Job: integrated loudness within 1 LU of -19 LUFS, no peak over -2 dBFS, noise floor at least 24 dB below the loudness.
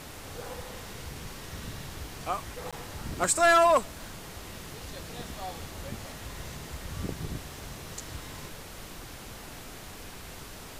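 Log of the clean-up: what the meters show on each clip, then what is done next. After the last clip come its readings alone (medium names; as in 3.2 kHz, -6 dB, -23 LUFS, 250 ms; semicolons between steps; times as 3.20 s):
dropouts 1; longest dropout 16 ms; noise floor -44 dBFS; noise floor target -56 dBFS; loudness -31.5 LUFS; peak level -14.5 dBFS; loudness target -19.0 LUFS
-> interpolate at 2.71 s, 16 ms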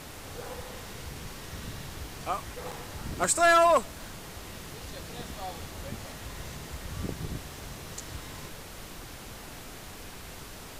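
dropouts 0; noise floor -44 dBFS; noise floor target -56 dBFS
-> noise print and reduce 12 dB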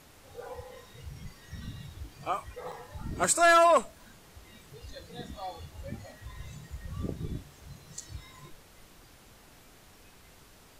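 noise floor -56 dBFS; loudness -26.5 LUFS; peak level -14.5 dBFS; loudness target -19.0 LUFS
-> trim +7.5 dB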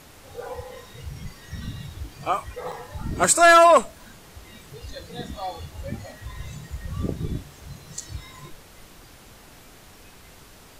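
loudness -19.0 LUFS; peak level -7.0 dBFS; noise floor -49 dBFS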